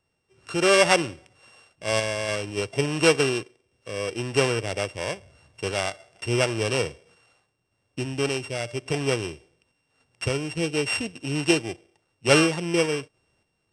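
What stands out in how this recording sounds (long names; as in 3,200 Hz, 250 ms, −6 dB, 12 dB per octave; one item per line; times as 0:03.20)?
a buzz of ramps at a fixed pitch in blocks of 16 samples
sample-and-hold tremolo
AAC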